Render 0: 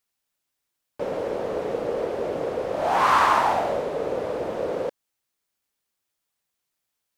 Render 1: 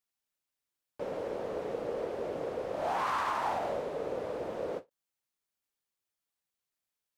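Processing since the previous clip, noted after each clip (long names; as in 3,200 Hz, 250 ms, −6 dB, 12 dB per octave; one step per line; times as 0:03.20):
brickwall limiter −15 dBFS, peak gain reduction 7 dB
every ending faded ahead of time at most 390 dB per second
level −8.5 dB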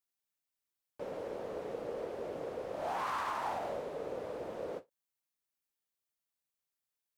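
high-shelf EQ 10,000 Hz +5 dB
level −4.5 dB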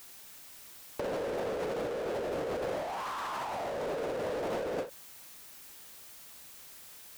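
power curve on the samples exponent 0.5
compressor whose output falls as the input rises −39 dBFS, ratio −1
level +4.5 dB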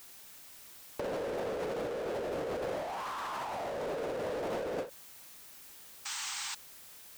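sound drawn into the spectrogram noise, 0:06.05–0:06.55, 770–8,700 Hz −37 dBFS
level −1.5 dB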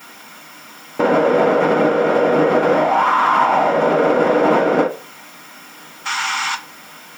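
convolution reverb RT60 0.35 s, pre-delay 3 ms, DRR −9 dB
level +8.5 dB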